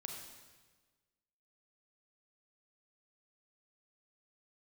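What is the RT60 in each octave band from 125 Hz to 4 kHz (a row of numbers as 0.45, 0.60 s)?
1.6, 1.5, 1.4, 1.3, 1.3, 1.3 s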